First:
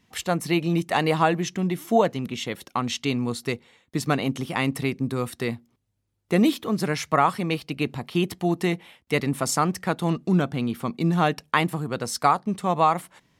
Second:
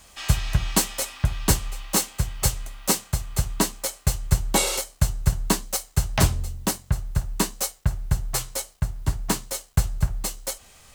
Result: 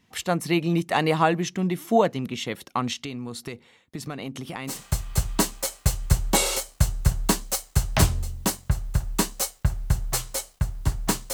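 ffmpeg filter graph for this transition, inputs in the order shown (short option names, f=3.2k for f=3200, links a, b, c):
-filter_complex "[0:a]asettb=1/sr,asplit=3[a][b][c];[a]atrim=end=2.934[d];[b]atrim=start=2.93:end=4.83,asetpts=PTS-STARTPTS,afade=t=in:d=0.004:c=qsin,afade=t=out:st=1.896:d=0.004:c=qsin,acompressor=threshold=-30dB:ratio=5:attack=3.2:release=140:knee=1:detection=peak[e];[c]atrim=start=4.826[f];[d][e]acrossfade=d=0.004:c1=hsin:c2=qsin[g];[g][f]acrossfade=d=0.004:c1=qsin:c2=hsin,apad=whole_dur=11.33,atrim=end=11.33,atrim=end=4.83,asetpts=PTS-STARTPTS[h];[1:a]atrim=start=2.88:end=9.54,asetpts=PTS-STARTPTS[i];[h][i]acrossfade=d=0.16:c1=tri:c2=tri"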